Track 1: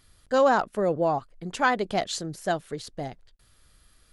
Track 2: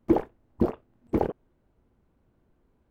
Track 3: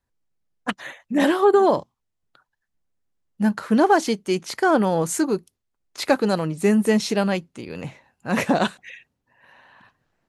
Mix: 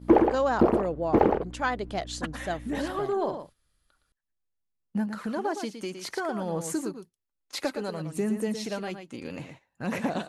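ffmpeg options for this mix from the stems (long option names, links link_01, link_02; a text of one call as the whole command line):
ffmpeg -i stem1.wav -i stem2.wav -i stem3.wav -filter_complex "[0:a]volume=-5.5dB[link_01];[1:a]aeval=exprs='val(0)+0.00891*(sin(2*PI*60*n/s)+sin(2*PI*2*60*n/s)/2+sin(2*PI*3*60*n/s)/3+sin(2*PI*4*60*n/s)/4+sin(2*PI*5*60*n/s)/5)':channel_layout=same,asplit=2[link_02][link_03];[link_03]highpass=frequency=720:poles=1,volume=15dB,asoftclip=type=tanh:threshold=-8.5dB[link_04];[link_02][link_04]amix=inputs=2:normalize=0,lowpass=frequency=1600:poles=1,volume=-6dB,volume=2dB,asplit=2[link_05][link_06];[link_06]volume=-5dB[link_07];[2:a]acompressor=threshold=-27dB:ratio=3,aphaser=in_gain=1:out_gain=1:delay=3.8:decay=0.34:speed=0.59:type=sinusoidal,adelay=1550,volume=-4.5dB,asplit=2[link_08][link_09];[link_09]volume=-8.5dB[link_10];[link_07][link_10]amix=inputs=2:normalize=0,aecho=0:1:114:1[link_11];[link_01][link_05][link_08][link_11]amix=inputs=4:normalize=0,agate=range=-9dB:threshold=-48dB:ratio=16:detection=peak" out.wav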